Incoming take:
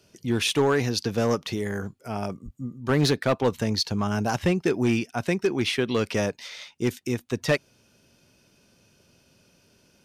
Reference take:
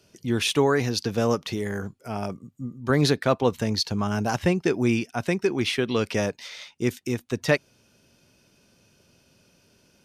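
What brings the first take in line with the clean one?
clip repair -15 dBFS; de-plosive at 2.44 s

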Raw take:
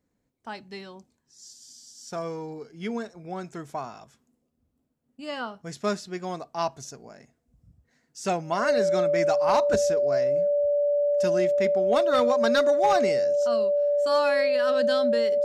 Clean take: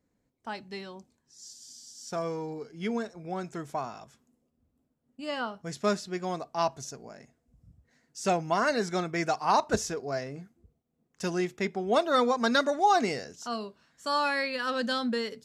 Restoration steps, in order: clip repair -14.5 dBFS; band-stop 580 Hz, Q 30

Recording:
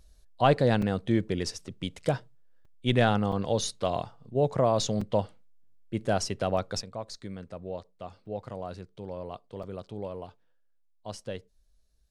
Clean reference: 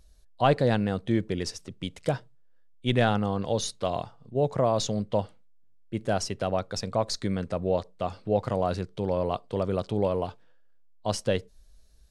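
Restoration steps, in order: interpolate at 0.82/2.65/3.32/5.01/6.57/8.26/9.63 s, 4.1 ms; trim 0 dB, from 6.82 s +11 dB

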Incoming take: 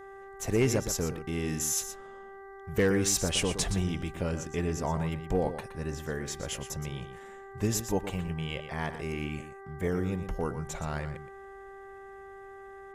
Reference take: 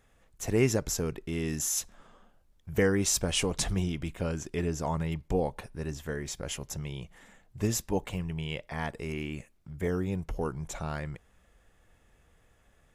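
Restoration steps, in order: clip repair -18 dBFS; de-hum 391.5 Hz, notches 5; inverse comb 119 ms -10.5 dB

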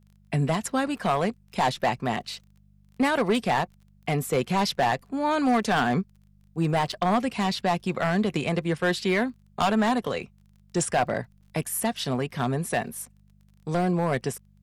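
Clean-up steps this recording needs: clip repair -16.5 dBFS; de-click; de-hum 49.9 Hz, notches 4; interpolate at 6.92/11.41 s, 6.4 ms

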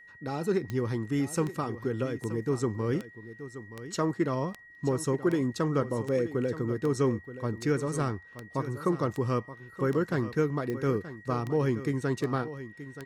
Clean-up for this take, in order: de-click; band-stop 1.9 kHz, Q 30; inverse comb 926 ms -13.5 dB

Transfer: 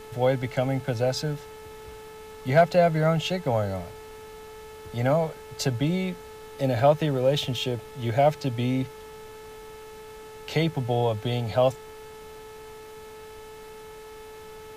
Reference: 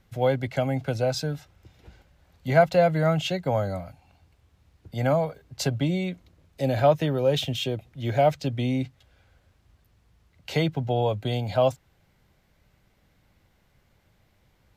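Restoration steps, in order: clip repair -8 dBFS; de-hum 434.6 Hz, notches 9; noise print and reduce 21 dB

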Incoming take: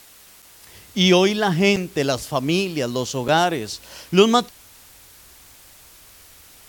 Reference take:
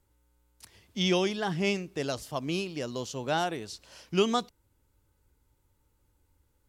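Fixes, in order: interpolate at 0.42/1.76/3.28 s, 6.2 ms; noise print and reduce 23 dB; trim 0 dB, from 0.67 s -11 dB

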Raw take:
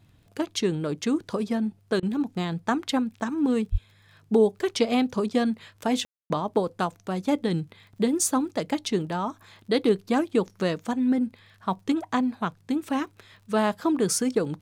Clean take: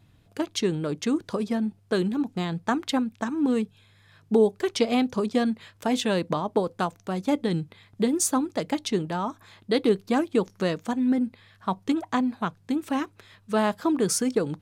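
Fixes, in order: de-click; 3.71–3.83 s: high-pass 140 Hz 24 dB/octave; room tone fill 6.05–6.30 s; interpolate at 2.00 s, 26 ms

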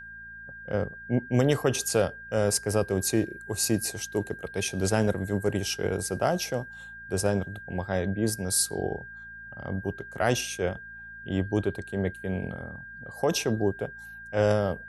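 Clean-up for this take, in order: de-hum 56 Hz, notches 4; band-stop 1.6 kHz, Q 30

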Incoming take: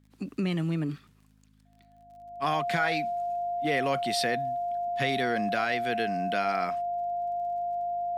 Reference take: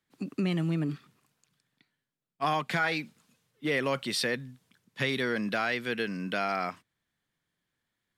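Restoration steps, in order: de-click; de-hum 52.2 Hz, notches 5; band-stop 700 Hz, Q 30

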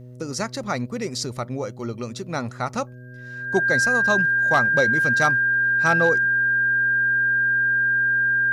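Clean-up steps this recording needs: clip repair -10 dBFS; de-hum 124.4 Hz, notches 5; band-stop 1.6 kHz, Q 30

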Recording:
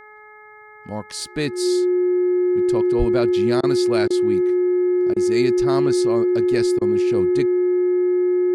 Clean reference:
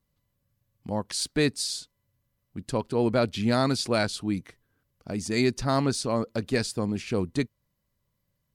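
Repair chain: de-hum 424.8 Hz, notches 5; band-stop 360 Hz, Q 30; 2.98–3.10 s: high-pass 140 Hz 24 dB/octave; interpolate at 3.61/4.08/5.14/6.79 s, 22 ms

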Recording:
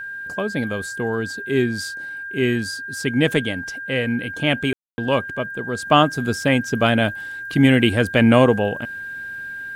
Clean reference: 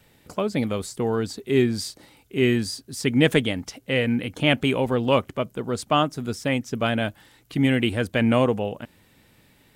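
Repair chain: band-stop 1.6 kHz, Q 30; room tone fill 4.73–4.98 s; gain correction -6 dB, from 5.85 s

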